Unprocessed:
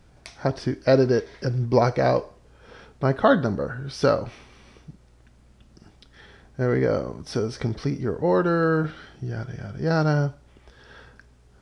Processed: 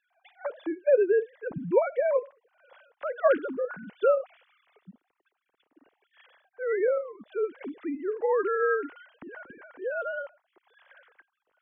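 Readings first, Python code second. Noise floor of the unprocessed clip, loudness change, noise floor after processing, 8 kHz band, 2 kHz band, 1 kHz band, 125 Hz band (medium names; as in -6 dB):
-55 dBFS, -4.5 dB, -81 dBFS, no reading, -4.0 dB, -7.0 dB, under -25 dB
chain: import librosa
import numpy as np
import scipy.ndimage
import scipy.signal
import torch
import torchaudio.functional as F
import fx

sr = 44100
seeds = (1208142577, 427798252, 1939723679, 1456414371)

y = fx.sine_speech(x, sr)
y = F.gain(torch.from_numpy(y), -5.0).numpy()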